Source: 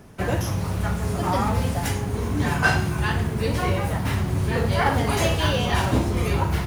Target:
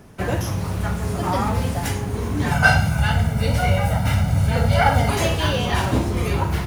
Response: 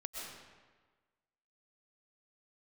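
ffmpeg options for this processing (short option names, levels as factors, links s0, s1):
-filter_complex "[0:a]asettb=1/sr,asplit=3[s0][s1][s2];[s0]atrim=end=2.514[s3];[s1]atrim=start=2.51:end=5.1,asetpts=PTS-STARTPTS,afade=t=in:d=0.004:c=qsin,afade=t=out:st=2.586:d=0.004:c=qsin,aecho=1:1:1.4:0.86,atrim=end_sample=114219[s4];[s2]atrim=start=5.096[s5];[s3][s4]acrossfade=d=0.004:c1=hsin:c2=qsin[s6];[s6][s5]acrossfade=d=0.004:c1=qsin:c2=hsin,volume=1.12"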